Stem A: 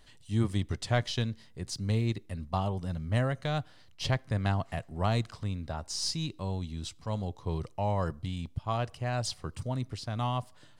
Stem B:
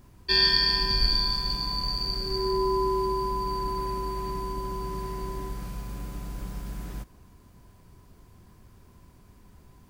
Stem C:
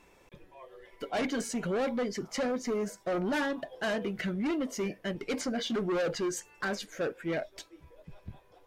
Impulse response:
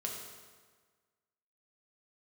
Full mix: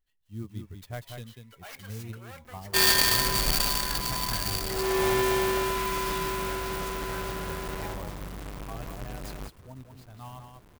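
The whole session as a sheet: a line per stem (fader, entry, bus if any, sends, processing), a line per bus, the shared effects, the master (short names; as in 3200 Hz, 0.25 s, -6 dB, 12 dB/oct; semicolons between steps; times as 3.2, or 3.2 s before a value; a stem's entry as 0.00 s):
-9.0 dB, 0.00 s, no send, echo send -6 dB, per-bin expansion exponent 1.5
-2.0 dB, 2.45 s, no send, no echo send, half-waves squared off; low shelf 200 Hz -8.5 dB
-7.5 dB, 0.50 s, no send, no echo send, HPF 1100 Hz 12 dB/oct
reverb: off
echo: echo 0.192 s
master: clock jitter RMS 0.034 ms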